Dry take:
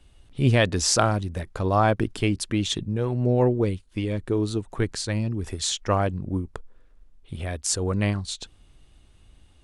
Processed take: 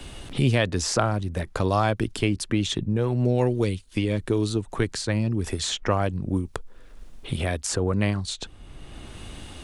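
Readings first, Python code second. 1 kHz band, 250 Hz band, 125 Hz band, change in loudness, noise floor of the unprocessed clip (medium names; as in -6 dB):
-2.0 dB, +0.5 dB, 0.0 dB, -0.5 dB, -56 dBFS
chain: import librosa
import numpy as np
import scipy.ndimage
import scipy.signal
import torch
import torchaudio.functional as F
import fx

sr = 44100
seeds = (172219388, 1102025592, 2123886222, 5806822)

y = fx.band_squash(x, sr, depth_pct=70)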